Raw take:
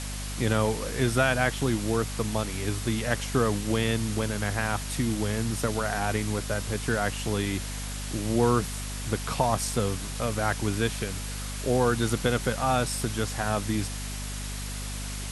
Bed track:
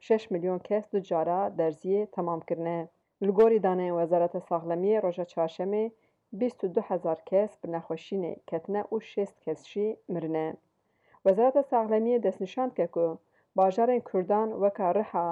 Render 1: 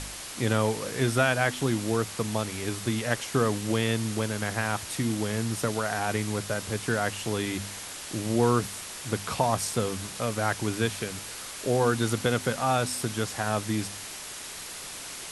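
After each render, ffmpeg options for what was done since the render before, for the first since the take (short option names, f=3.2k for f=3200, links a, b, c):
-af "bandreject=f=50:t=h:w=4,bandreject=f=100:t=h:w=4,bandreject=f=150:t=h:w=4,bandreject=f=200:t=h:w=4,bandreject=f=250:t=h:w=4"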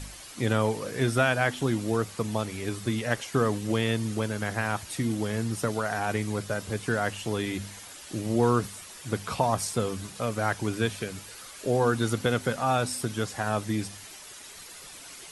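-af "afftdn=nr=9:nf=-40"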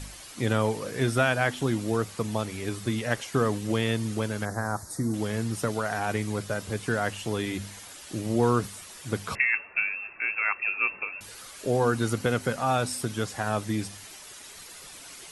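-filter_complex "[0:a]asettb=1/sr,asplit=3[a][b][c];[a]atrim=end=4.454[d];[b]atrim=start=4.45:end=5.14,asetpts=PTS-STARTPTS,afade=t=in:d=0.004:c=qsin,afade=t=out:st=0.686:d=0.004:c=qsin,asuperstop=centerf=2800:order=4:qfactor=0.79[e];[c]atrim=start=5.136[f];[d][e]acrossfade=d=0.004:c1=hsin:c2=qsin[g];[g][f]acrossfade=d=0.004:c1=qsin:c2=hsin,asettb=1/sr,asplit=3[h][i][j];[h]atrim=end=9.354[k];[i]atrim=start=9.35:end=11.21,asetpts=PTS-STARTPTS,afade=t=in:d=0.004:c=qsin,afade=t=out:st=1.856:d=0.004:c=qsin,lowpass=f=2.4k:t=q:w=0.5098,lowpass=f=2.4k:t=q:w=0.6013,lowpass=f=2.4k:t=q:w=0.9,lowpass=f=2.4k:t=q:w=2.563,afreqshift=-2800[l];[j]atrim=start=11.206[m];[k][l]acrossfade=d=0.004:c1=hsin:c2=qsin[n];[n][m]acrossfade=d=0.004:c1=qsin:c2=hsin,asettb=1/sr,asplit=3[o][p][q];[o]atrim=end=11.864[r];[p]atrim=start=11.86:end=12.59,asetpts=PTS-STARTPTS,afade=t=in:d=0.004:c=qsin,afade=t=out:st=0.726:d=0.004:c=qsin,bandreject=f=3.5k:w=12[s];[q]atrim=start=12.586[t];[r][s]acrossfade=d=0.004:c1=hsin:c2=qsin[u];[u][t]acrossfade=d=0.004:c1=qsin:c2=hsin"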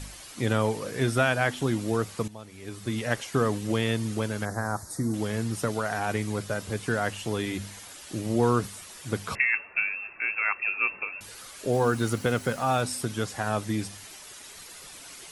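-filter_complex "[0:a]asettb=1/sr,asplit=3[a][b][c];[a]atrim=end=11.734[d];[b]atrim=start=11.73:end=12.81,asetpts=PTS-STARTPTS,afade=t=in:d=0.004:c=qsin,afade=t=out:st=1.076:d=0.004:c=qsin,acrusher=bits=7:mix=0:aa=0.5[e];[c]atrim=start=12.806[f];[d][e]acrossfade=d=0.004:c1=hsin:c2=qsin[g];[g][f]acrossfade=d=0.004:c1=qsin:c2=hsin,asplit=2[h][i];[h]atrim=end=2.28,asetpts=PTS-STARTPTS,afade=t=out:st=2.276:d=0.004:c=hsin:silence=0.177828[j];[i]atrim=start=2.28,asetpts=PTS-STARTPTS,afade=t=in:d=0.73:c=qua:silence=0.177828[k];[j][k]concat=n=2:v=0:a=1"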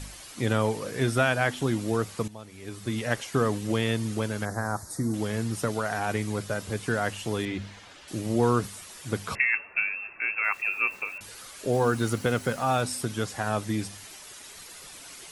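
-filter_complex "[0:a]asettb=1/sr,asplit=3[a][b][c];[a]atrim=end=7.454[d];[b]atrim=start=7.45:end=8.08,asetpts=PTS-STARTPTS,afade=t=in:d=0.004:c=qsin,afade=t=out:st=0.626:d=0.004:c=qsin,lowpass=4k[e];[c]atrim=start=8.076[f];[d][e]acrossfade=d=0.004:c1=hsin:c2=qsin[g];[g][f]acrossfade=d=0.004:c1=qsin:c2=hsin,asettb=1/sr,asplit=3[h][i][j];[h]atrim=end=10.444[k];[i]atrim=start=10.44:end=11.18,asetpts=PTS-STARTPTS,afade=t=in:d=0.004:c=qsin,afade=t=out:st=0.736:d=0.004:c=qsin,aeval=exprs='val(0)*gte(abs(val(0)),0.00473)':c=same[l];[j]atrim=start=11.176[m];[k][l]acrossfade=d=0.004:c1=hsin:c2=qsin[n];[n][m]acrossfade=d=0.004:c1=qsin:c2=hsin"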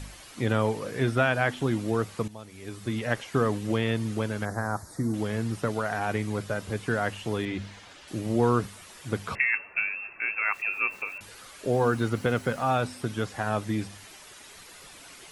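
-filter_complex "[0:a]acrossover=split=3600[a][b];[b]acompressor=threshold=-48dB:ratio=4:attack=1:release=60[c];[a][c]amix=inputs=2:normalize=0"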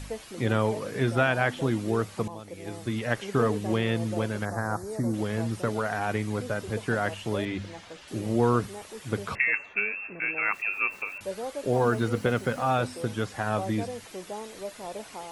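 -filter_complex "[1:a]volume=-12dB[a];[0:a][a]amix=inputs=2:normalize=0"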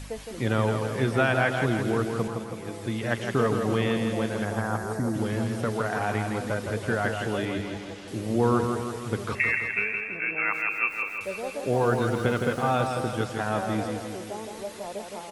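-af "aecho=1:1:164|328|492|656|820|984|1148|1312:0.531|0.303|0.172|0.0983|0.056|0.0319|0.0182|0.0104"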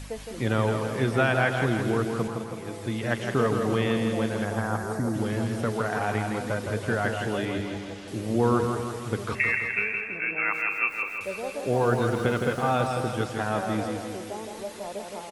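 -filter_complex "[0:a]asplit=2[a][b];[b]adelay=204.1,volume=-14dB,highshelf=f=4k:g=-4.59[c];[a][c]amix=inputs=2:normalize=0"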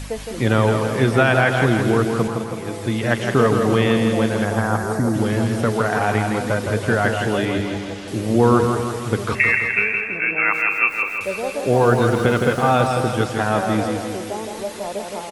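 -af "volume=8dB,alimiter=limit=-3dB:level=0:latency=1"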